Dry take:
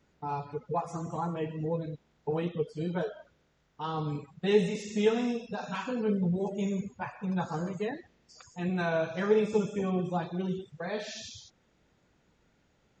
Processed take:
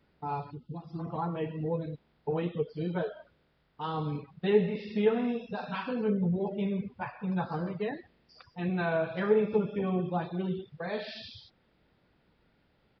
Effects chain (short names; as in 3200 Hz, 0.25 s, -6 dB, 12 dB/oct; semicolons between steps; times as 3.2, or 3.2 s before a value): treble ducked by the level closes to 2200 Hz, closed at -23.5 dBFS; downsampling 11025 Hz; spectral gain 0.51–0.99, 390–2600 Hz -18 dB